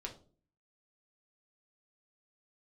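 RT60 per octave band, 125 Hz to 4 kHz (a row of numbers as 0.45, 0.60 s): 0.70, 0.65, 0.50, 0.35, 0.25, 0.30 s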